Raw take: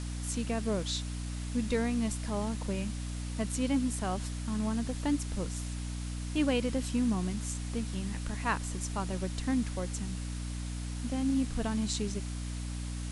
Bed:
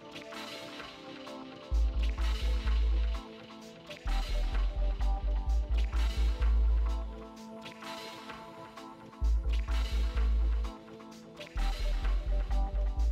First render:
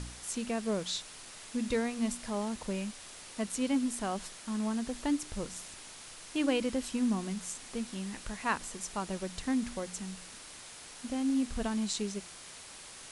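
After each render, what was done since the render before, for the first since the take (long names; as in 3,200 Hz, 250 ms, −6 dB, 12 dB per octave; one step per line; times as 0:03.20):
hum removal 60 Hz, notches 5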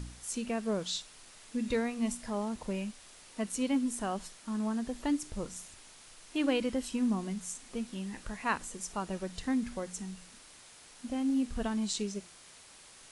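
noise reduction from a noise print 6 dB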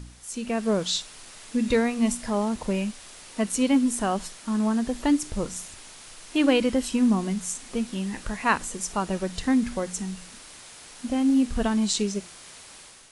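automatic gain control gain up to 9 dB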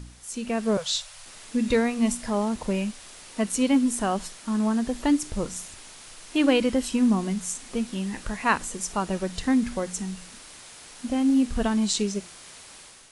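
0:00.77–0:01.26: elliptic band-stop filter 140–530 Hz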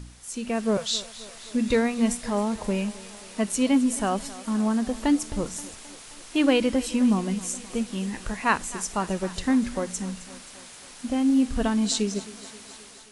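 feedback echo with a high-pass in the loop 264 ms, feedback 71%, high-pass 230 Hz, level −17 dB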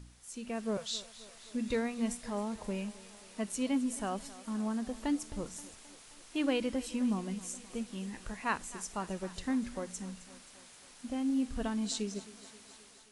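level −10.5 dB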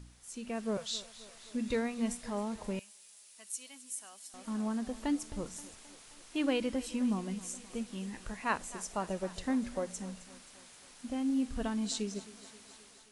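0:02.79–0:04.34: first difference
0:08.50–0:10.23: parametric band 600 Hz +6 dB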